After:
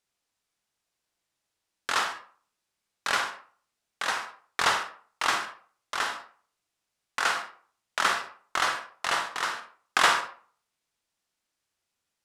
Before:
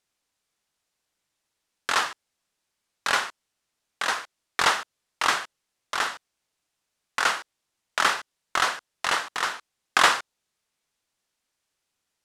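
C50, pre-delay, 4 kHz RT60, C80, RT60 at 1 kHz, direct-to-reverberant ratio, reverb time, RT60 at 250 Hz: 7.5 dB, 38 ms, 0.30 s, 13.0 dB, 0.45 s, 5.5 dB, 0.45 s, 0.40 s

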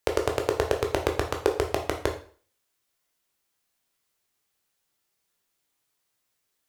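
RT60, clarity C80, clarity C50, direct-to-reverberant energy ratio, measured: 0.45 s, 13.5 dB, 9.0 dB, 2.5 dB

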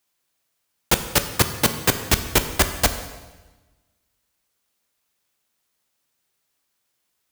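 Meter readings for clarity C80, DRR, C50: 11.5 dB, 8.0 dB, 10.0 dB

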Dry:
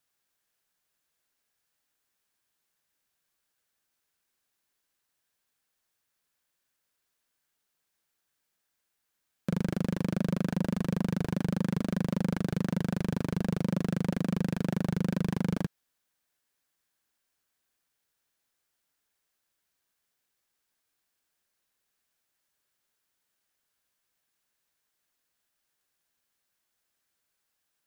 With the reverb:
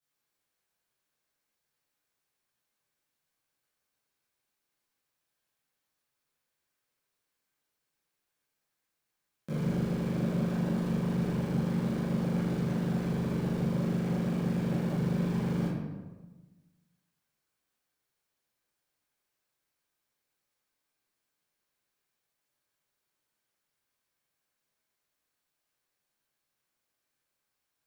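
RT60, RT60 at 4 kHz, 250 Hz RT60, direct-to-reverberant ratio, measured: 1.3 s, 0.75 s, 1.5 s, -11.5 dB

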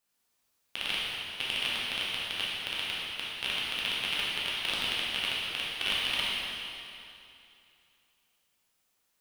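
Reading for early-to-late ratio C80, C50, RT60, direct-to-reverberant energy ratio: -1.0 dB, -3.0 dB, 2.6 s, -7.5 dB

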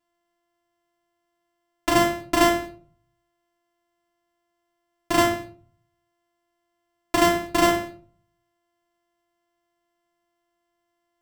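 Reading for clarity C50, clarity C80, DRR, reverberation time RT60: 8.0 dB, 12.0 dB, -5.0 dB, 0.50 s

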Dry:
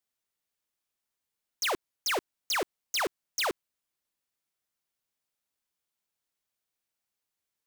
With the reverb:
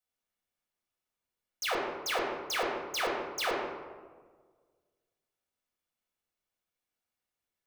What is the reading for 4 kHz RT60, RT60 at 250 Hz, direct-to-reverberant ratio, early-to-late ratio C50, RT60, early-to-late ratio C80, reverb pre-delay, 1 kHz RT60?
0.80 s, 1.8 s, -4.5 dB, 1.5 dB, 1.5 s, 3.5 dB, 4 ms, 1.4 s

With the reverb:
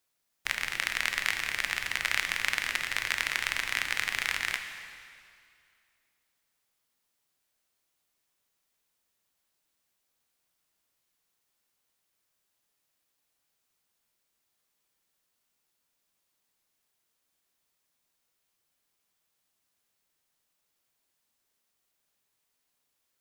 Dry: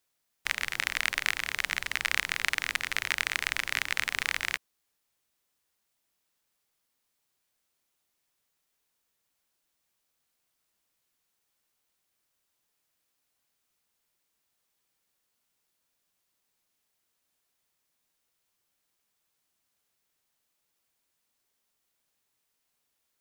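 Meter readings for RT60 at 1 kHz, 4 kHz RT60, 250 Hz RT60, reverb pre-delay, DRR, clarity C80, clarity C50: 2.4 s, 2.2 s, 2.3 s, 7 ms, 6.0 dB, 8.0 dB, 7.0 dB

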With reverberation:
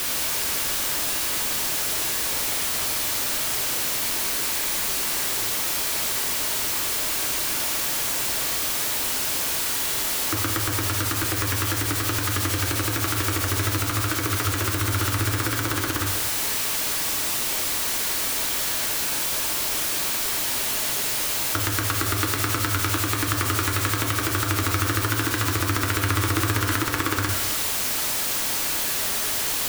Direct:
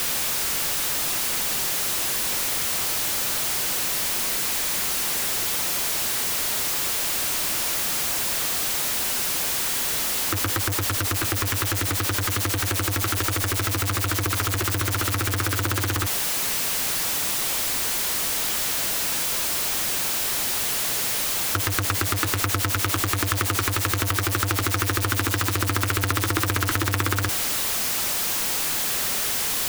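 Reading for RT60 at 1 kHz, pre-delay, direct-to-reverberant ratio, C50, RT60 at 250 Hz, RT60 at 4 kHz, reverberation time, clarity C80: 1.4 s, 3 ms, 1.5 dB, 5.5 dB, 1.5 s, 1.1 s, 1.4 s, 7.0 dB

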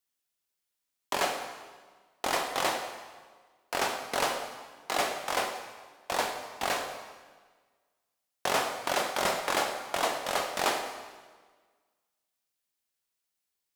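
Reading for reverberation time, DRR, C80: 1.5 s, 4.0 dB, 8.0 dB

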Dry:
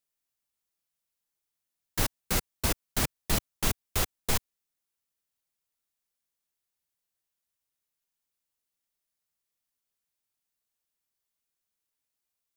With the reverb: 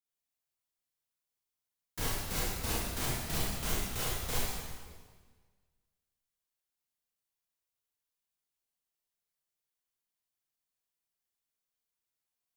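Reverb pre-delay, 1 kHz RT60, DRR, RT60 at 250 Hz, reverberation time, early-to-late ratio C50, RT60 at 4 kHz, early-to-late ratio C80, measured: 26 ms, 1.5 s, -6.5 dB, 1.7 s, 1.5 s, -2.5 dB, 1.4 s, 0.5 dB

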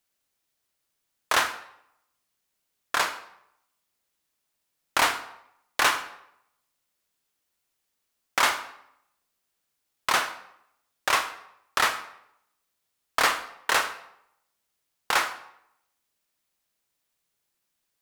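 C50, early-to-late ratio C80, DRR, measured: 12.0 dB, 14.5 dB, 10.0 dB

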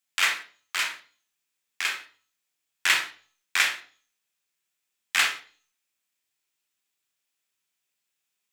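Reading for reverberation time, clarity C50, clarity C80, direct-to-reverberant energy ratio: 0.40 s, 10.5 dB, 16.5 dB, 5.5 dB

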